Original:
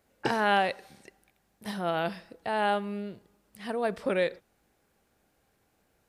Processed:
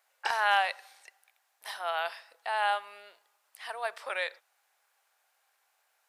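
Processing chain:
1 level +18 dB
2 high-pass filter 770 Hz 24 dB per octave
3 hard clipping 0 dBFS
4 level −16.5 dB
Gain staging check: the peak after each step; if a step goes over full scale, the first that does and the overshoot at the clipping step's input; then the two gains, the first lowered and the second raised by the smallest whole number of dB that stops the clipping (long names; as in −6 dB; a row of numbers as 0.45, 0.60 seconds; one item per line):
+5.5, +3.5, 0.0, −16.5 dBFS
step 1, 3.5 dB
step 1 +14 dB, step 4 −12.5 dB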